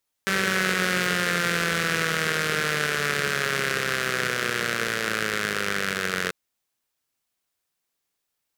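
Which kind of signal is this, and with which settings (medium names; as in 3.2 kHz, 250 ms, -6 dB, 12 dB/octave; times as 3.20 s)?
four-cylinder engine model, changing speed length 6.04 s, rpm 5800, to 2700, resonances 190/430/1500 Hz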